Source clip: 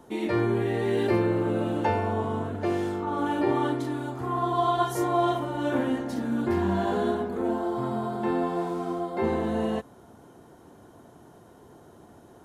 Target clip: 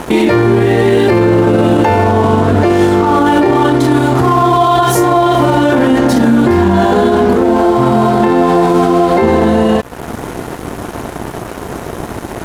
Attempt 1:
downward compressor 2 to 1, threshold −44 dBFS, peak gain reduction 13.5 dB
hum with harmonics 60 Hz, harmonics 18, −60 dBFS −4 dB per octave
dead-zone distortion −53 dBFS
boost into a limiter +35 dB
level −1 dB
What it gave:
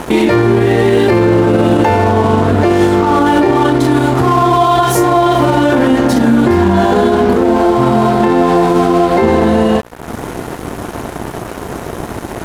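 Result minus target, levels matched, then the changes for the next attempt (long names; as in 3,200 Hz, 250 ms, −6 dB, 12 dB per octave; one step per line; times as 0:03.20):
downward compressor: peak gain reduction +3 dB
change: downward compressor 2 to 1, threshold −38 dBFS, peak gain reduction 10.5 dB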